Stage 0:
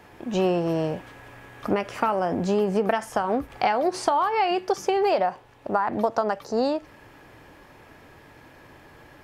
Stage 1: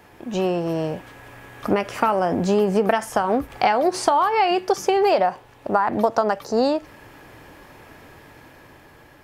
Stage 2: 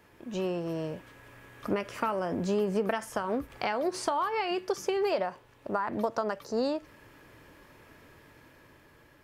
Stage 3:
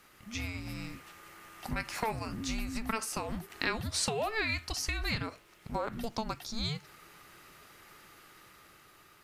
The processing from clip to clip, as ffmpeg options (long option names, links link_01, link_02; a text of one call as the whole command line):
ffmpeg -i in.wav -af "highshelf=frequency=9200:gain=6,dynaudnorm=framelen=350:gausssize=7:maxgain=4.5dB" out.wav
ffmpeg -i in.wav -af "equalizer=frequency=770:width=6:gain=-9.5,volume=-9dB" out.wav
ffmpeg -i in.wav -af "afreqshift=-450,tiltshelf=frequency=970:gain=-8" out.wav